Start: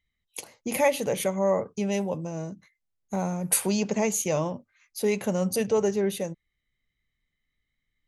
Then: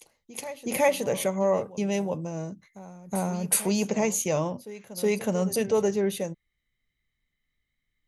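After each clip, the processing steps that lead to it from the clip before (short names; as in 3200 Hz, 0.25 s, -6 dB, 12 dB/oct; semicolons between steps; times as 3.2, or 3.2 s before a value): reverse echo 0.369 s -16 dB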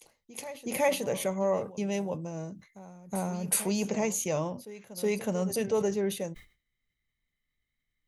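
sustainer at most 150 dB/s; gain -4 dB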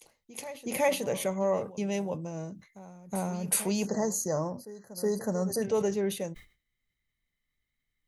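spectral delete 3.86–5.62, 2000–4000 Hz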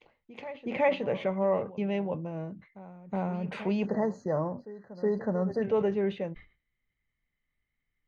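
LPF 2900 Hz 24 dB/oct; gain +1 dB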